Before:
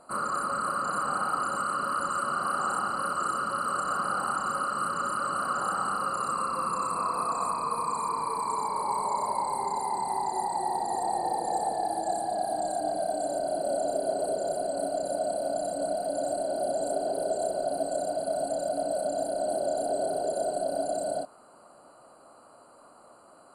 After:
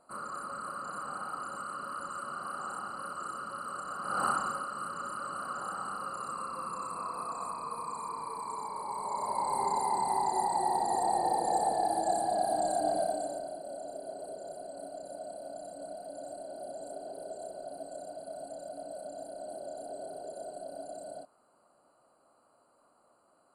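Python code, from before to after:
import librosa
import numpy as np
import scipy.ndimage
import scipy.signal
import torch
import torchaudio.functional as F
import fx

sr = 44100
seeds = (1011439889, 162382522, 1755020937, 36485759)

y = fx.gain(x, sr, db=fx.line((4.0, -10.0), (4.25, 1.5), (4.66, -8.5), (8.93, -8.5), (9.62, 0.0), (12.99, 0.0), (13.61, -13.0)))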